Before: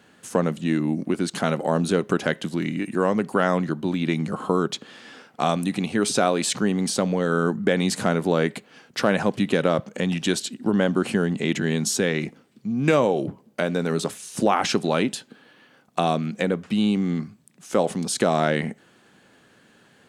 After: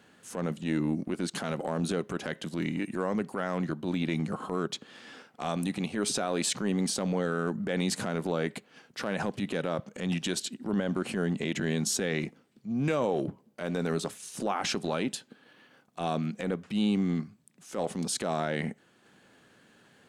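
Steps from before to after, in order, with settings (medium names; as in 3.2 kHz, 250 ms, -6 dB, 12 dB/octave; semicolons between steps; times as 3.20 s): peak limiter -14 dBFS, peak gain reduction 8.5 dB; transient shaper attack -8 dB, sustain -4 dB; trim -3.5 dB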